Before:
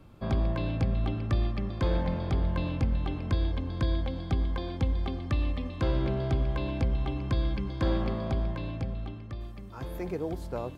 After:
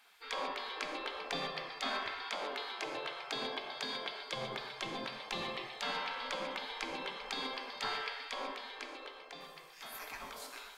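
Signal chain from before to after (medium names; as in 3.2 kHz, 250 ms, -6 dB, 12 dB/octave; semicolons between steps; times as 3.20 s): spectral gate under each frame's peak -25 dB weak; 2.22–4.30 s: bass shelf 170 Hz -7.5 dB; gated-style reverb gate 170 ms flat, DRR 4.5 dB; trim +6 dB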